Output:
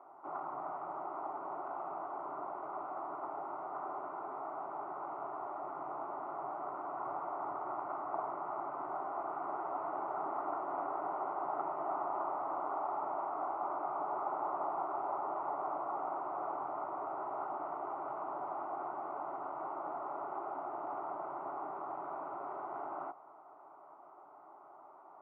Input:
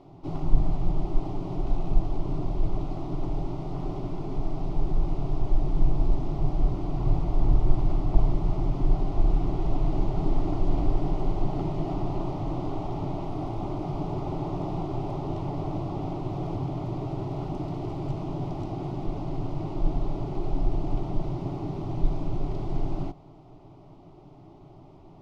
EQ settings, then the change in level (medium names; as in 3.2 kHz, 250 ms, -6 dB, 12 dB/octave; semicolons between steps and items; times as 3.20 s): high-pass 1 kHz 12 dB/octave; elliptic low-pass 1.4 kHz, stop band 80 dB; tilt EQ +3.5 dB/octave; +9.0 dB